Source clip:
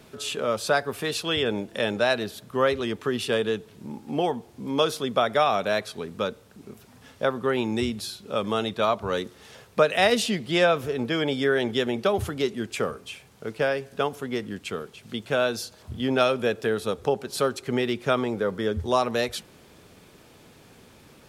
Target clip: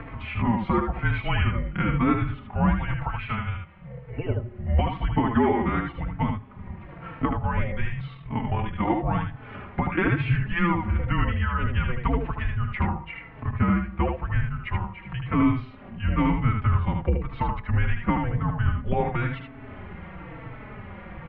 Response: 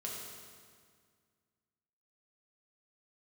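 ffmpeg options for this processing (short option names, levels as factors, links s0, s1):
-filter_complex "[0:a]asplit=2[s0][s1];[1:a]atrim=start_sample=2205[s2];[s1][s2]afir=irnorm=-1:irlink=0,volume=0.075[s3];[s0][s3]amix=inputs=2:normalize=0,acompressor=mode=upward:threshold=0.0251:ratio=2.5,highpass=f=150:t=q:w=0.5412,highpass=f=150:t=q:w=1.307,lowpass=f=2600:t=q:w=0.5176,lowpass=f=2600:t=q:w=0.7071,lowpass=f=2600:t=q:w=1.932,afreqshift=-350,acompressor=threshold=0.0708:ratio=6,asettb=1/sr,asplit=3[s4][s5][s6];[s4]atrim=end=3.074[s7];[s5]atrim=start=3.07:end=4.29,asetpts=PTS-STARTPTS,afade=t=in:d=0.004:c=qsin,afade=t=out:st=1.216:d=0.004:c=qsin,lowshelf=f=340:g=-10.5[s8];[s6]atrim=start=4.286[s9];[s7][s8]acrossfade=d=0.004:c1=hsin:c2=qsin[s10];[s10][s9]acrossfade=d=0.004:c1=qsin:c2=hsin,aecho=1:1:77:0.562,asettb=1/sr,asplit=3[s11][s12][s13];[s11]atrim=end=8.144[s14];[s12]atrim=start=8.14:end=8.9,asetpts=PTS-STARTPTS,afade=t=in:d=0.004:c=qsin,afade=t=out:st=0.756:d=0.004:c=qsin,tremolo=f=42:d=0.571[s15];[s13]atrim=start=8.896[s16];[s14][s15]acrossfade=d=0.004:c1=hsin:c2=qsin[s17];[s17][s16]acrossfade=d=0.004:c1=qsin:c2=hsin,asplit=2[s18][s19];[s19]adelay=4,afreqshift=-0.98[s20];[s18][s20]amix=inputs=2:normalize=1,volume=2.24"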